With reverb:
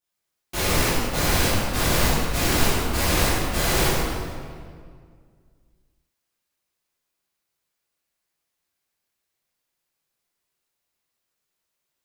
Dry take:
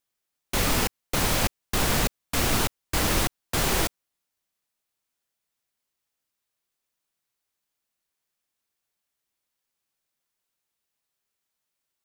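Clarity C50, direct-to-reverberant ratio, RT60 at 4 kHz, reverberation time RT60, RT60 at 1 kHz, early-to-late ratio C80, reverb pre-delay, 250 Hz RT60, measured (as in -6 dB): -2.5 dB, -12.5 dB, 1.4 s, 2.0 s, 1.9 s, -0.5 dB, 5 ms, 2.4 s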